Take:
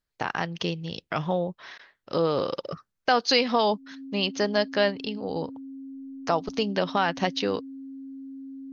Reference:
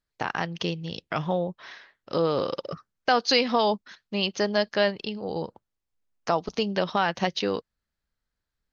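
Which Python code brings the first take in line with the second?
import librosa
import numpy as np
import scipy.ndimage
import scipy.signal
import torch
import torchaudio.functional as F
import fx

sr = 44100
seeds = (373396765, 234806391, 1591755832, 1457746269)

y = fx.notch(x, sr, hz=270.0, q=30.0)
y = fx.fix_interpolate(y, sr, at_s=(1.78,), length_ms=11.0)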